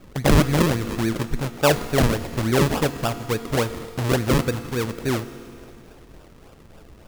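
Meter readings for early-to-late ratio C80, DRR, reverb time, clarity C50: 13.5 dB, 11.5 dB, 2.6 s, 12.5 dB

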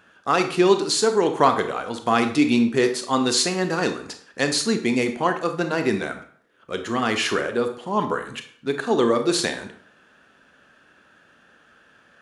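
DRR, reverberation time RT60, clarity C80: 7.0 dB, 0.55 s, 13.5 dB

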